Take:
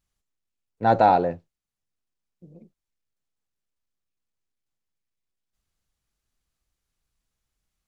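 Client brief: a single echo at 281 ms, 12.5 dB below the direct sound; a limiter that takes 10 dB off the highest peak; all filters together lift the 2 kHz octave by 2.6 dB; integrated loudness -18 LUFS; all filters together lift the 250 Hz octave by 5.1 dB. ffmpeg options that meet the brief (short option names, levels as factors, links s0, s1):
-af "equalizer=f=250:t=o:g=6.5,equalizer=f=2000:t=o:g=4,alimiter=limit=0.211:level=0:latency=1,aecho=1:1:281:0.237,volume=2.66"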